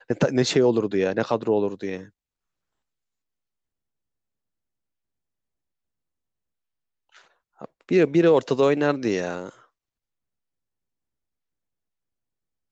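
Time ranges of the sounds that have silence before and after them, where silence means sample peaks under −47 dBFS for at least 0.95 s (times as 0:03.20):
0:07.15–0:09.65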